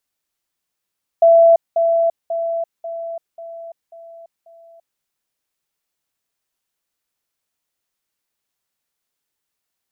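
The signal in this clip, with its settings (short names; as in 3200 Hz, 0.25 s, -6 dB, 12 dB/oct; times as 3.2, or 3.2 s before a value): level ladder 668 Hz -6.5 dBFS, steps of -6 dB, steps 7, 0.34 s 0.20 s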